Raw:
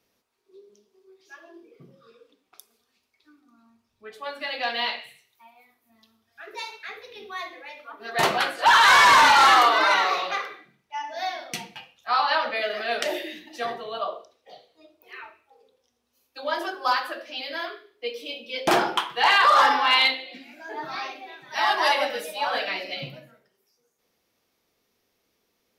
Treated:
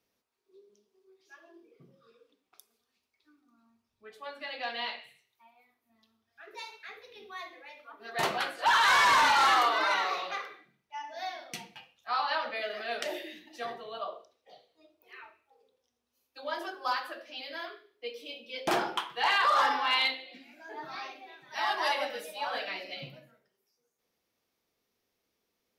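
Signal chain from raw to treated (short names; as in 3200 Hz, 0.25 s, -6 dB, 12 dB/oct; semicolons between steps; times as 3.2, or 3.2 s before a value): 4.26–6.51 high shelf 7100 Hz -6 dB; gain -8 dB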